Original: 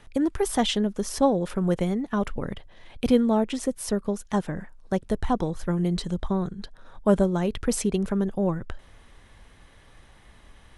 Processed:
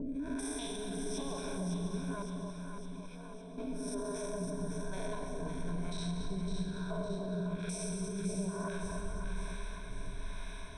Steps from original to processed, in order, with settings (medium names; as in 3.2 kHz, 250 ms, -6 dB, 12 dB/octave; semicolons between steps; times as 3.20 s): spectrogram pixelated in time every 200 ms; harmonic tremolo 1.1 Hz, depth 100%, crossover 550 Hz; compression 4:1, threshold -43 dBFS, peak gain reduction 18 dB; rippled EQ curve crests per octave 1.6, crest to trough 18 dB; plate-style reverb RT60 2.1 s, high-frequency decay 1×, pre-delay 110 ms, DRR 4 dB; peak limiter -37.5 dBFS, peak gain reduction 12.5 dB; 2.22–3.58 s: feedback comb 570 Hz, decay 0.44 s, mix 80%; echo whose repeats swap between lows and highs 279 ms, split 890 Hz, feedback 74%, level -3 dB; trim +5.5 dB